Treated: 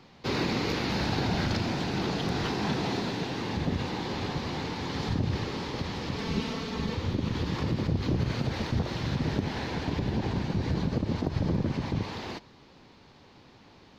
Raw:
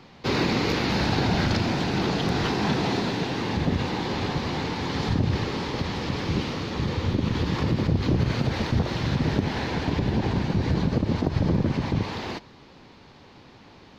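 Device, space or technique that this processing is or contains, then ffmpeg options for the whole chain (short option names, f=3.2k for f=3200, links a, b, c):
exciter from parts: -filter_complex "[0:a]asplit=2[a][b];[b]highpass=2.9k,asoftclip=type=tanh:threshold=-35dB,volume=-12dB[c];[a][c]amix=inputs=2:normalize=0,asettb=1/sr,asplit=3[d][e][f];[d]atrim=end=6.184[g];[e]atrim=start=6.18:end=6.95,asetpts=PTS-STARTPTS,afade=t=in:d=0.004:c=qsin,afade=t=out:st=0.766:d=0.004:c=qsin,aecho=1:1:4.5:0.67,atrim=end_sample=33957[h];[f]atrim=start=6.946[i];[g][h]acrossfade=d=0.004:c1=hsin:c2=qsin[j];[j][i]acrossfade=d=0.004:c1=qsin:c2=hsin,volume=-5dB"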